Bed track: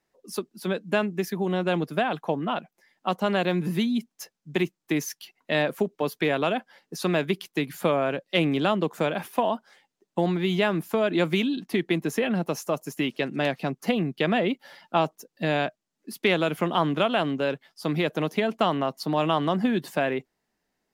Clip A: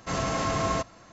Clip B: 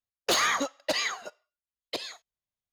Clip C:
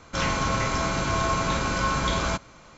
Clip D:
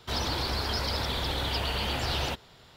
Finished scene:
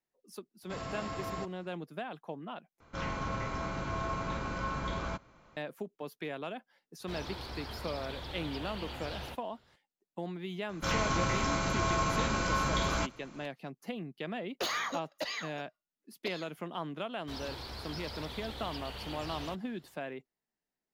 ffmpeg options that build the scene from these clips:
-filter_complex "[3:a]asplit=2[a][b];[4:a]asplit=2[c][d];[0:a]volume=-15dB[e];[1:a]bandreject=f=6.2k:w=5.1[f];[a]aemphasis=mode=reproduction:type=75fm[g];[c]highshelf=f=4.5k:g=-6[h];[2:a]equalizer=f=8.6k:w=2.4:g=-15[i];[e]asplit=2[j][k];[j]atrim=end=2.804[l];[g]atrim=end=2.77,asetpts=PTS-STARTPTS,volume=-10.5dB[m];[k]atrim=start=5.566[n];[f]atrim=end=1.12,asetpts=PTS-STARTPTS,volume=-12dB,afade=t=in:d=0.004:c=hsin,afade=t=out:st=1.116:d=0.004:c=hsin,adelay=630[o];[h]atrim=end=2.76,asetpts=PTS-STARTPTS,volume=-11.5dB,afade=t=in:d=0.004:c=hsin,afade=t=out:st=2.756:d=0.004:c=hsin,adelay=7000[p];[b]atrim=end=2.77,asetpts=PTS-STARTPTS,volume=-5.5dB,afade=t=in:d=0.004:c=hsin,afade=t=out:st=2.766:d=0.004:c=hsin,adelay=10690[q];[i]atrim=end=2.72,asetpts=PTS-STARTPTS,volume=-8.5dB,afade=t=in:d=0.004:c=hsin,afade=t=out:st=2.716:d=0.004:c=hsin,adelay=14320[r];[d]atrim=end=2.76,asetpts=PTS-STARTPTS,volume=-13dB,afade=t=in:d=0.004:c=hsin,afade=t=out:st=2.756:d=0.004:c=hsin,adelay=17200[s];[l][m]acrossfade=d=0.004:c1=hsin:c2=hsin[t];[t][n]acrossfade=d=0.004:c1=hsin:c2=hsin[u];[u][o][p][q][r][s]amix=inputs=6:normalize=0"

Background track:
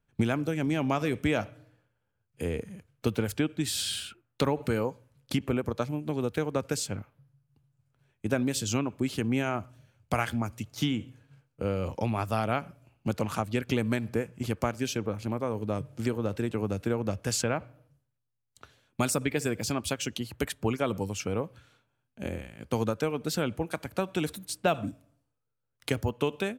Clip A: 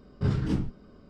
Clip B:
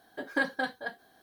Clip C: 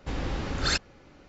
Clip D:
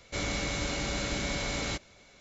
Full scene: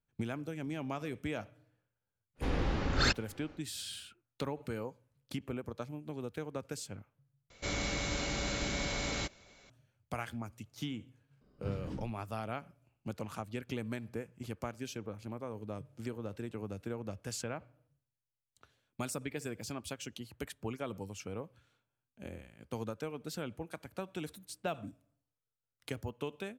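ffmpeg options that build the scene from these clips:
-filter_complex "[0:a]volume=-11dB[a];[3:a]highshelf=f=6.5k:g=-11[b];[a]asplit=2[c][d];[c]atrim=end=7.504[e];[4:a]atrim=end=2.2,asetpts=PTS-STARTPTS,volume=-3dB[f];[d]atrim=start=9.696[g];[b]atrim=end=1.28,asetpts=PTS-STARTPTS,volume=-1dB,afade=t=in:d=0.1,afade=t=out:st=1.18:d=0.1,adelay=2350[h];[1:a]atrim=end=1.09,asetpts=PTS-STARTPTS,volume=-14.5dB,afade=t=in:d=0.004:c=hsin,afade=t=out:st=1.086:d=0.004:c=hsin,adelay=11410[i];[e][f]acrossfade=d=0.004:c1=hsin:c2=hsin[j];[j][g]acrossfade=d=0.004:c1=hsin:c2=hsin[k];[k][h][i]amix=inputs=3:normalize=0"

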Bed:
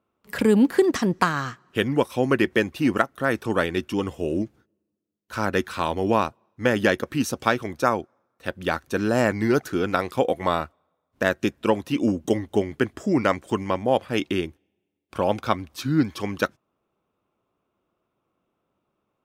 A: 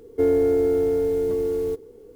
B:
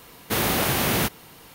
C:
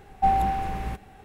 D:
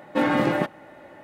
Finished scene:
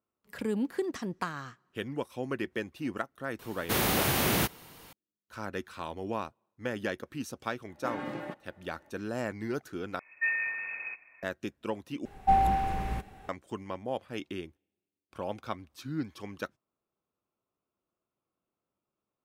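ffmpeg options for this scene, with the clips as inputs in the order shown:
-filter_complex "[3:a]asplit=2[a][b];[0:a]volume=-13.5dB[c];[a]lowpass=f=2.2k:t=q:w=0.5098,lowpass=f=2.2k:t=q:w=0.6013,lowpass=f=2.2k:t=q:w=0.9,lowpass=f=2.2k:t=q:w=2.563,afreqshift=-2600[d];[c]asplit=3[e][f][g];[e]atrim=end=9.994[h];[d]atrim=end=1.24,asetpts=PTS-STARTPTS,volume=-9dB[i];[f]atrim=start=11.226:end=12.054[j];[b]atrim=end=1.24,asetpts=PTS-STARTPTS,volume=-2dB[k];[g]atrim=start=13.286[l];[2:a]atrim=end=1.54,asetpts=PTS-STARTPTS,volume=-4.5dB,afade=t=in:d=0.004:c=hsin,afade=t=out:st=1.536:d=0.004:c=hsin,adelay=3390[m];[4:a]atrim=end=1.23,asetpts=PTS-STARTPTS,volume=-16dB,afade=t=in:d=0.004:c=hsin,afade=t=out:st=1.226:d=0.004:c=hsin,adelay=7680[n];[h][i]acrossfade=d=0.004:c1=hsin:c2=hsin[o];[o][j]acrossfade=d=0.004:c1=hsin:c2=hsin[p];[p][k]acrossfade=d=0.004:c1=hsin:c2=hsin[q];[q][l]acrossfade=d=0.004:c1=hsin:c2=hsin[r];[r][m][n]amix=inputs=3:normalize=0"

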